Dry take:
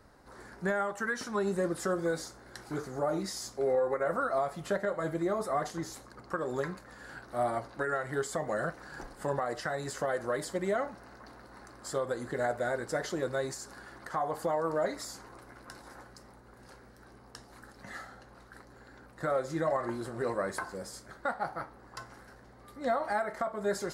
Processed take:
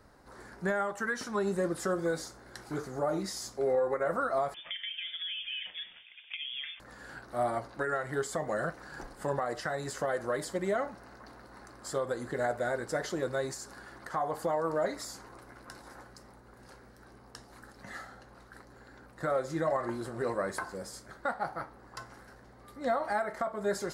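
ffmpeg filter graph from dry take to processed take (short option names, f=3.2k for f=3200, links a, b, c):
-filter_complex "[0:a]asettb=1/sr,asplit=3[a][b][c];[a]atrim=end=4.544[d];[b]atrim=start=4.54:end=6.8,asetpts=PTS-STARTPTS,afade=t=in:d=0.004:c=qsin,afade=t=out:st=2.256:d=0.004:c=qsin,highpass=f=390:p=1,acompressor=threshold=-34dB:ratio=6:attack=3.2:release=140:knee=1:detection=peak,lowpass=f=3.1k:t=q:w=0.5098,lowpass=f=3.1k:t=q:w=0.6013,lowpass=f=3.1k:t=q:w=0.9,lowpass=f=3.1k:t=q:w=2.563,afreqshift=-3700[e];[c]atrim=start=6.796[f];[d][e]acrossfade=d=0.004:c1=hsin:c2=qsin[g];[g][f]acrossfade=d=0.004:c1=qsin:c2=hsin"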